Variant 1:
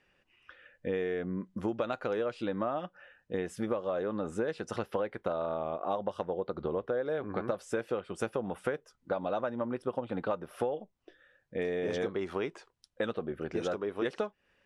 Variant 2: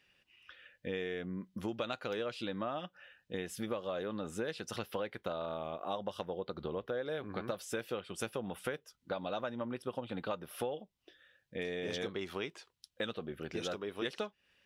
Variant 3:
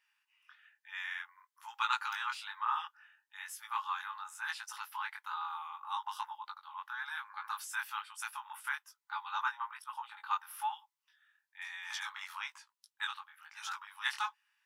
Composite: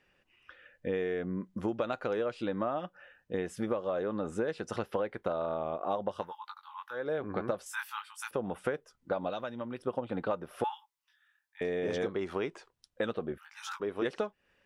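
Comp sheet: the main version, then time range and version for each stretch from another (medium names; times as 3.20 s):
1
6.25–6.98 s: from 3, crossfade 0.16 s
7.66–8.31 s: from 3
9.30–9.79 s: from 2
10.64–11.61 s: from 3
13.38–13.80 s: from 3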